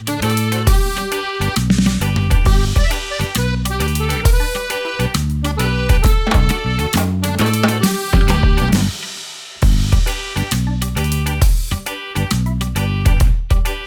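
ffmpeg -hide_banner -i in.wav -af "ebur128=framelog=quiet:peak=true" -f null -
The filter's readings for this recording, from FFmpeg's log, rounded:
Integrated loudness:
  I:         -17.0 LUFS
  Threshold: -27.1 LUFS
Loudness range:
  LRA:         2.8 LU
  Threshold: -37.1 LUFS
  LRA low:   -18.5 LUFS
  LRA high:  -15.7 LUFS
True peak:
  Peak:       -1.6 dBFS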